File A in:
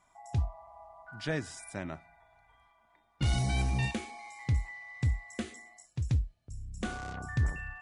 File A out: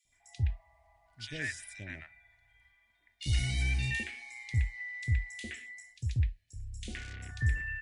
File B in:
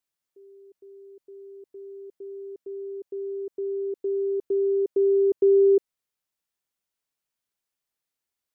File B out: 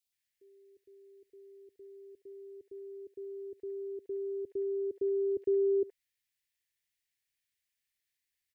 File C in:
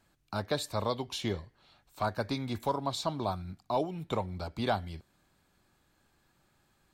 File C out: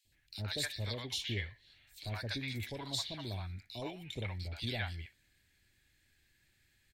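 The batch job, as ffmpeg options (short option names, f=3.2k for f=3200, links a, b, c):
-filter_complex "[0:a]firequalizer=gain_entry='entry(110,0);entry(160,-11);entry(260,-8);entry(1200,-17);entry(1800,7);entry(5900,0)':delay=0.05:min_phase=1,acrossover=split=730|3000[a][b][c];[a]adelay=50[d];[b]adelay=120[e];[d][e][c]amix=inputs=3:normalize=0"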